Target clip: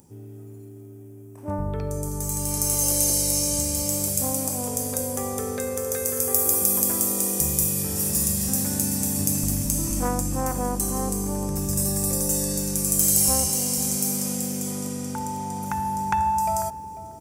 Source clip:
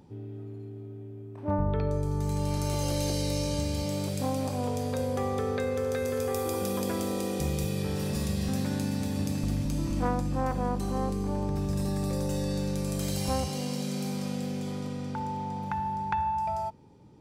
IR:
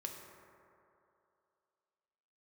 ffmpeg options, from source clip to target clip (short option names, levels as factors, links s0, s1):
-filter_complex "[0:a]asplit=2[s0][s1];[s1]adelay=494,lowpass=f=840:p=1,volume=0.251,asplit=2[s2][s3];[s3]adelay=494,lowpass=f=840:p=1,volume=0.16[s4];[s0][s2][s4]amix=inputs=3:normalize=0,aexciter=amount=4.8:drive=9.8:freq=5900,dynaudnorm=f=770:g=5:m=3.76,volume=0.891"